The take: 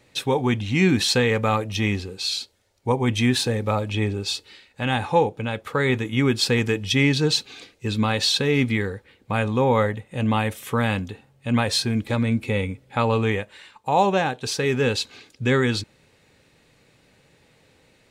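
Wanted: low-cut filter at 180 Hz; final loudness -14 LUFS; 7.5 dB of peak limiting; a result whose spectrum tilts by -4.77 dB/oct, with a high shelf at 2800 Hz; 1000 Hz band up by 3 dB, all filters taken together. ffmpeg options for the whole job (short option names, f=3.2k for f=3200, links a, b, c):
-af "highpass=180,equalizer=f=1k:t=o:g=4.5,highshelf=f=2.8k:g=-5.5,volume=11.5dB,alimiter=limit=-0.5dB:level=0:latency=1"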